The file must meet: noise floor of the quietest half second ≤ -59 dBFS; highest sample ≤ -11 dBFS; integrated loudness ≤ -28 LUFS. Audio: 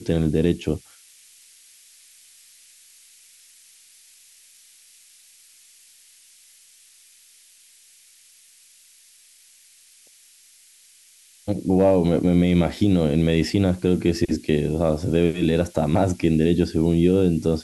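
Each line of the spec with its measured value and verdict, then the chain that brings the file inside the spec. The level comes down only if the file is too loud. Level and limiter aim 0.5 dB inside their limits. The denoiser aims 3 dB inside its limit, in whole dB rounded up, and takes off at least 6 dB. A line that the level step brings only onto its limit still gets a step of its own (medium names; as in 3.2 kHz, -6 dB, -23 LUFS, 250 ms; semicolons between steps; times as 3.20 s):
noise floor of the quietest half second -53 dBFS: fail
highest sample -6.0 dBFS: fail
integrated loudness -20.5 LUFS: fail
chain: trim -8 dB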